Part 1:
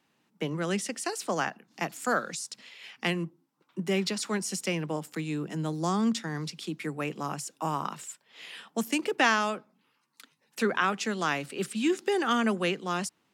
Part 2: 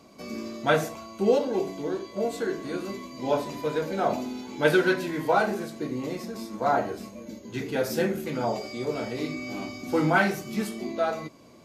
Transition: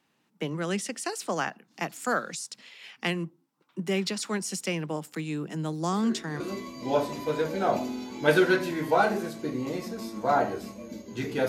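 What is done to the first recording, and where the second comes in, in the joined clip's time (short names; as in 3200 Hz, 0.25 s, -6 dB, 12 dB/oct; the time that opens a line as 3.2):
part 1
5.92 add part 2 from 2.29 s 0.48 s -11 dB
6.4 switch to part 2 from 2.77 s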